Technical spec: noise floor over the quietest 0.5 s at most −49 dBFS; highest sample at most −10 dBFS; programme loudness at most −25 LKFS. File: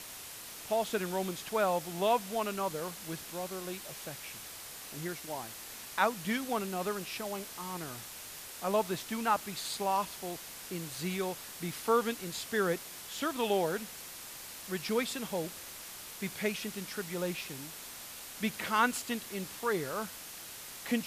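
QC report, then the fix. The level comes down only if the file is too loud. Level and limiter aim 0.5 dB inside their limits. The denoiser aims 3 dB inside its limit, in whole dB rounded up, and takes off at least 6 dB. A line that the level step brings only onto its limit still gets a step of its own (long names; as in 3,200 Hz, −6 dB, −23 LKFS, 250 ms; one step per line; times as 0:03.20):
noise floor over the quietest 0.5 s −46 dBFS: out of spec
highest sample −12.5 dBFS: in spec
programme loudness −35.0 LKFS: in spec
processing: broadband denoise 6 dB, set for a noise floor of −46 dBFS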